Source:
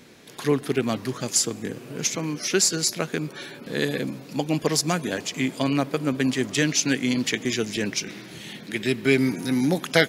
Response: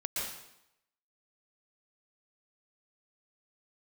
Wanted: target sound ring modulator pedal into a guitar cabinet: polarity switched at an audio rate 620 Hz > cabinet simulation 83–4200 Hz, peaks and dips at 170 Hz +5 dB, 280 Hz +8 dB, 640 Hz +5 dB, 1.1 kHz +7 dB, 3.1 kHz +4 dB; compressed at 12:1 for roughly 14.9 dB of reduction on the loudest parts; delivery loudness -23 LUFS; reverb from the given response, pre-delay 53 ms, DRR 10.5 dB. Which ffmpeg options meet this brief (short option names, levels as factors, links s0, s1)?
-filter_complex "[0:a]acompressor=threshold=0.0355:ratio=12,asplit=2[s0][s1];[1:a]atrim=start_sample=2205,adelay=53[s2];[s1][s2]afir=irnorm=-1:irlink=0,volume=0.188[s3];[s0][s3]amix=inputs=2:normalize=0,aeval=exprs='val(0)*sgn(sin(2*PI*620*n/s))':c=same,highpass=83,equalizer=f=170:t=q:w=4:g=5,equalizer=f=280:t=q:w=4:g=8,equalizer=f=640:t=q:w=4:g=5,equalizer=f=1100:t=q:w=4:g=7,equalizer=f=3100:t=q:w=4:g=4,lowpass=f=4200:w=0.5412,lowpass=f=4200:w=1.3066,volume=2.66"